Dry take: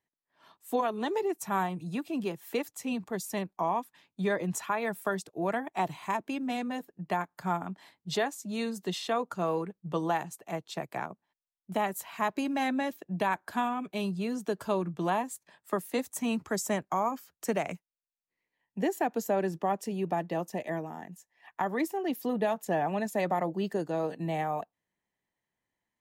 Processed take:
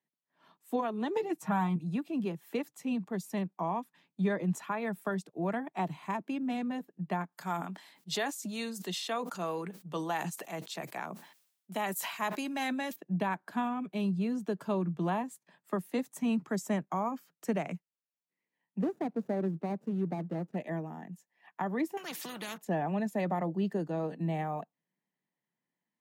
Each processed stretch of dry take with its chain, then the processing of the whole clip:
0:01.16–0:01.76: high-shelf EQ 9,400 Hz −5 dB + comb filter 6.4 ms, depth 68% + multiband upward and downward compressor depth 70%
0:07.32–0:12.96: high-pass filter 440 Hz 6 dB per octave + high-shelf EQ 3,200 Hz +12 dB + level that may fall only so fast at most 76 dB per second
0:18.79–0:20.56: running median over 41 samples + dynamic equaliser 2,600 Hz, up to −6 dB, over −50 dBFS, Q 0.81
0:21.97–0:22.58: low-shelf EQ 380 Hz −10.5 dB + every bin compressed towards the loudest bin 4 to 1
whole clip: Butterworth high-pass 150 Hz; bass and treble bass +10 dB, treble −5 dB; level −4.5 dB

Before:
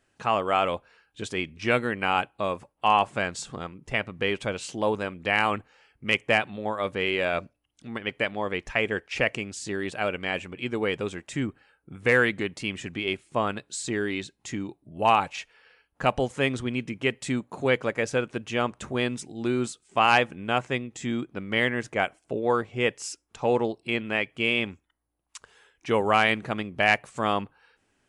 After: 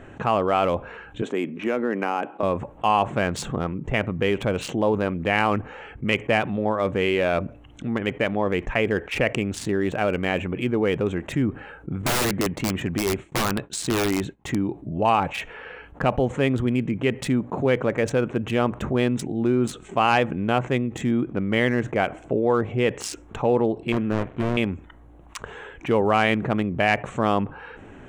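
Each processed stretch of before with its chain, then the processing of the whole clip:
0:01.22–0:02.43: high-pass filter 220 Hz 24 dB per octave + high-shelf EQ 2,800 Hz −9 dB + downward compressor 3 to 1, threshold −27 dBFS
0:12.02–0:14.61: downward expander −47 dBFS + parametric band 960 Hz +3 dB 0.94 octaves + wrap-around overflow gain 20 dB
0:23.92–0:24.57: gap after every zero crossing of 0.29 ms + low-pass filter 2,900 Hz 6 dB per octave + notch filter 810 Hz, Q 8.9
whole clip: adaptive Wiener filter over 9 samples; tilt shelving filter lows +4 dB, about 830 Hz; envelope flattener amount 50%

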